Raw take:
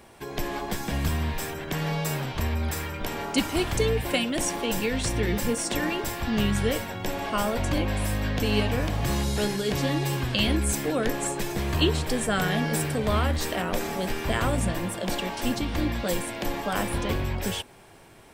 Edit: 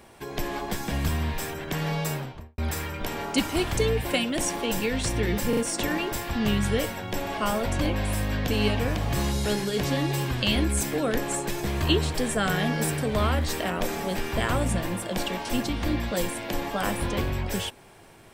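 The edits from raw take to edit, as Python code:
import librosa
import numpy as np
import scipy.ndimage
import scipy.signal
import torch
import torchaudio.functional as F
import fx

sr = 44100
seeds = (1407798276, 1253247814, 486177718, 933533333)

y = fx.studio_fade_out(x, sr, start_s=2.03, length_s=0.55)
y = fx.edit(y, sr, fx.stutter(start_s=5.49, slice_s=0.04, count=3), tone=tone)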